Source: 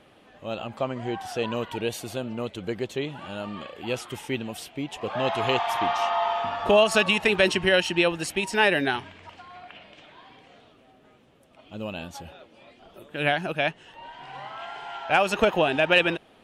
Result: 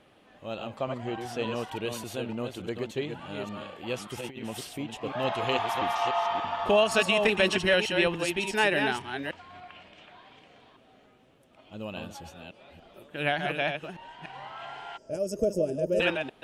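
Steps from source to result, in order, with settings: reverse delay 0.291 s, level -5.5 dB; 4.17–4.79 negative-ratio compressor -32 dBFS, ratio -0.5; 14.97–16 spectral gain 660–4700 Hz -28 dB; gain -4 dB

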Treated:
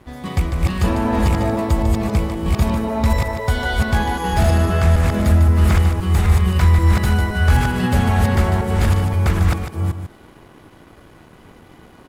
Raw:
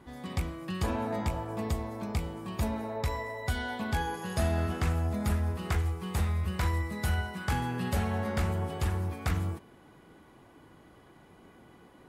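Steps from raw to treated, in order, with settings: reverse delay 0.261 s, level -0.5 dB; low shelf 68 Hz +9 dB; in parallel at -1 dB: limiter -20 dBFS, peak gain reduction 8.5 dB; on the sum: crossover distortion -52 dBFS; on a send: echo 0.149 s -9.5 dB; on the sum: slew limiter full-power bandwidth 140 Hz; gain +5 dB

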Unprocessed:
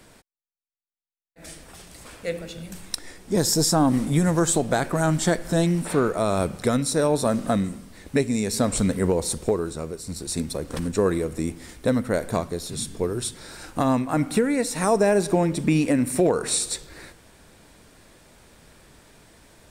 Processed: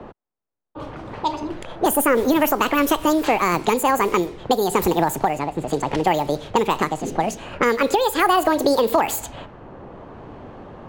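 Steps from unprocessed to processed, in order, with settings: wide varispeed 1.81×; in parallel at -1 dB: compressor, threshold -28 dBFS, peak gain reduction 12 dB; on the sum: low-pass opened by the level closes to 850 Hz, open at -16.5 dBFS; three-band squash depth 40%; gain +1 dB

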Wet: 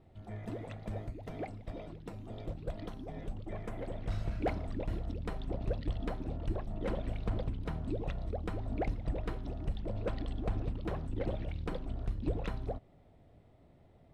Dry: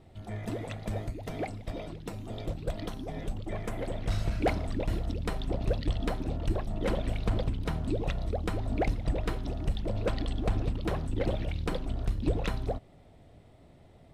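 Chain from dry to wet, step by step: high shelf 3400 Hz -10 dB; gain -5.5 dB

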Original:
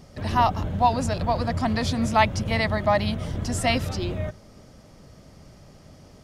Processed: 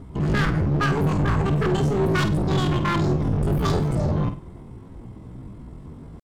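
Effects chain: RIAA curve playback; tube stage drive 15 dB, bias 0.65; hard clip -17.5 dBFS, distortion -14 dB; pitch shift +9 st; flutter echo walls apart 8.5 m, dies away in 0.33 s

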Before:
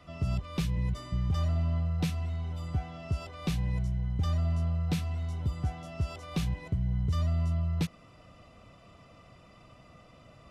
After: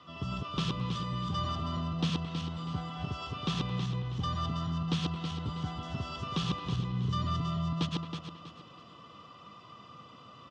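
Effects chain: regenerating reverse delay 0.161 s, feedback 56%, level -2 dB; speaker cabinet 150–6400 Hz, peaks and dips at 650 Hz -8 dB, 1100 Hz +10 dB, 2200 Hz -8 dB, 3200 Hz +10 dB; speakerphone echo 0.22 s, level -13 dB

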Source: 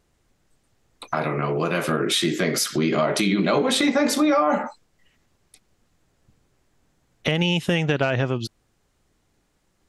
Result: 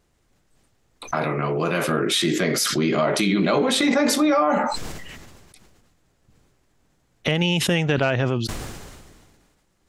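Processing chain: sustainer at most 34 dB/s

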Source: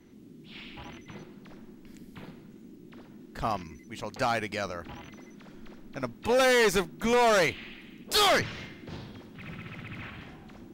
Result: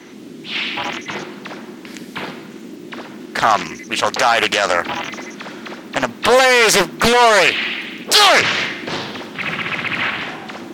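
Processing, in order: in parallel at +2.5 dB: negative-ratio compressor -26 dBFS, ratio -0.5; on the sum: weighting filter A; maximiser +15 dB; Doppler distortion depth 0.92 ms; gain -1 dB

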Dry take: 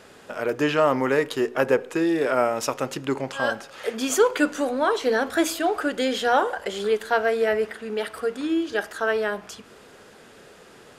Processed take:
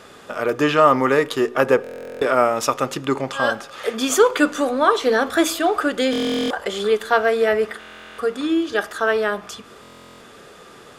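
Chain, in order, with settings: small resonant body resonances 1200/3500 Hz, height 11 dB, ringing for 45 ms; stuck buffer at 1.82/6.11/7.79/9.81, samples 1024, times 16; gain +4 dB

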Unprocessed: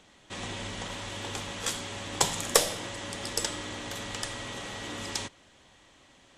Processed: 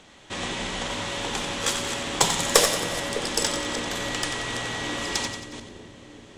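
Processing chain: reverse delay 0.2 s, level -9.5 dB; high shelf 12000 Hz -7 dB; in parallel at -6 dB: overloaded stage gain 25.5 dB; on the sum: notches 50/100/150/200 Hz; on a send: split-band echo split 520 Hz, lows 0.604 s, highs 91 ms, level -8.5 dB; on the sum: gain +3.5 dB

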